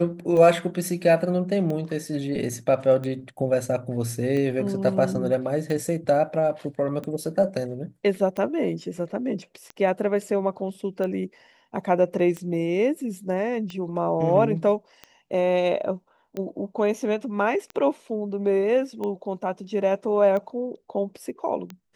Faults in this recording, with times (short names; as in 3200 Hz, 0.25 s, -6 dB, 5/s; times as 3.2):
tick 45 rpm -20 dBFS